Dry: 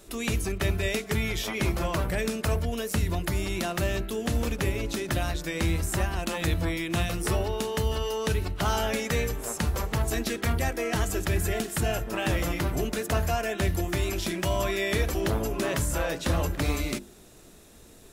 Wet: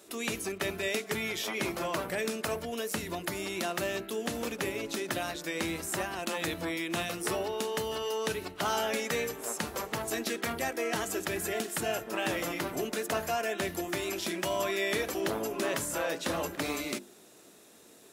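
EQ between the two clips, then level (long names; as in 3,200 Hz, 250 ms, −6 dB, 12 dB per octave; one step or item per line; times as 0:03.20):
high-pass filter 250 Hz 12 dB per octave
−2.0 dB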